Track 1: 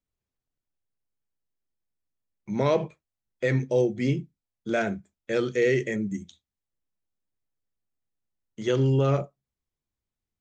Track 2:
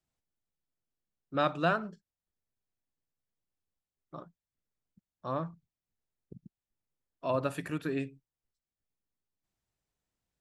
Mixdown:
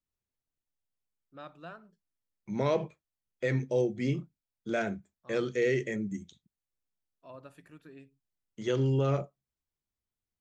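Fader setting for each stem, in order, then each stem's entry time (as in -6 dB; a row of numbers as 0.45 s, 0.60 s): -5.0 dB, -18.0 dB; 0.00 s, 0.00 s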